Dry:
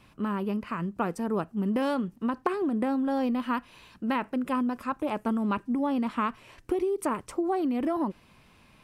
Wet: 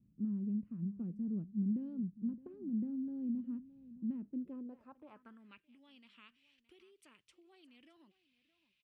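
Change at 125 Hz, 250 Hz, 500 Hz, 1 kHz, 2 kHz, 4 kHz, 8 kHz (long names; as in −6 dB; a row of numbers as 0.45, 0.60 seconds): −6.5 dB, −10.5 dB, −27.5 dB, −35.5 dB, below −25 dB, below −20 dB, can't be measured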